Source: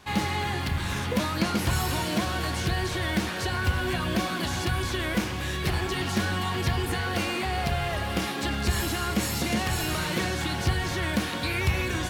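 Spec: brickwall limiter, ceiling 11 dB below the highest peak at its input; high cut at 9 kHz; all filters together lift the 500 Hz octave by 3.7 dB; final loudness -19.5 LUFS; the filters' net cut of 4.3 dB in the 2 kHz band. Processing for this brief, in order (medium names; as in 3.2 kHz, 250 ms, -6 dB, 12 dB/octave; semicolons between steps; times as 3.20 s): low-pass 9 kHz; peaking EQ 500 Hz +5.5 dB; peaking EQ 2 kHz -6 dB; trim +12.5 dB; peak limiter -11 dBFS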